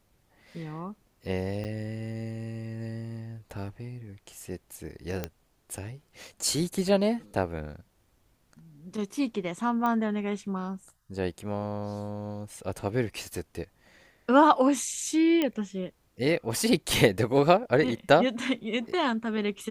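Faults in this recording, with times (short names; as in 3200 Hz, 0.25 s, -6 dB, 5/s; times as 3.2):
1.64–1.65 gap 8.9 ms
5.24 pop -16 dBFS
9.86 pop -18 dBFS
15.42 pop -14 dBFS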